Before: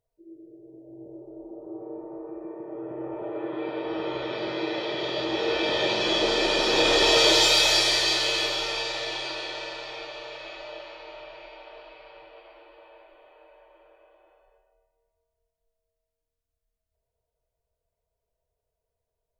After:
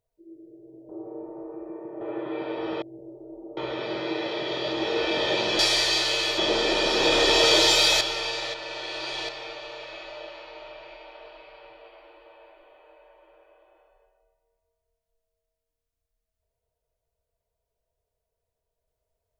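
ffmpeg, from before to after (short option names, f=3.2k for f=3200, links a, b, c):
-filter_complex "[0:a]asplit=10[a][b][c][d][e][f][g][h][i][j];[a]atrim=end=0.892[k];[b]atrim=start=1.638:end=2.762[l];[c]atrim=start=3.278:end=4.092[m];[d]atrim=start=0.888:end=1.642[n];[e]atrim=start=4.088:end=6.112[o];[f]atrim=start=7.738:end=8.532[p];[g]atrim=start=6.108:end=7.742[q];[h]atrim=start=8.528:end=9.062[r];[i]atrim=start=9.058:end=9.812,asetpts=PTS-STARTPTS,areverse[s];[j]atrim=start=9.808[t];[k][l]acrossfade=d=0.004:c1=hsin:c2=hsin[u];[u][m]acrossfade=d=0.004:c1=hsin:c2=hsin[v];[v][n]acrossfade=d=0.004:c1=hsin:c2=hsin[w];[w][o]acrossfade=d=0.004:c1=hsin:c2=hsin[x];[x][p]acrossfade=d=0.004:c1=hsin:c2=hsin[y];[y][q]acrossfade=d=0.004:c1=hsin:c2=hsin[z];[z][r]acrossfade=d=0.004:c1=hsin:c2=hsin[aa];[aa][s]acrossfade=d=0.004:c1=hsin:c2=hsin[ab];[ab][t]acrossfade=d=0.004:c1=hsin:c2=hsin"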